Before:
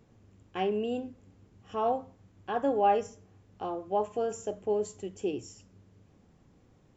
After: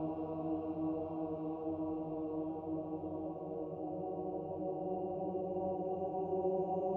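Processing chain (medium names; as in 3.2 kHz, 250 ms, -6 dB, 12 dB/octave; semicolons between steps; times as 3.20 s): Doppler pass-by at 1.88 s, 33 m/s, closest 3.6 m; Paulstretch 26×, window 0.50 s, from 3.65 s; tilt shelf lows +8 dB, about 690 Hz; trim +16 dB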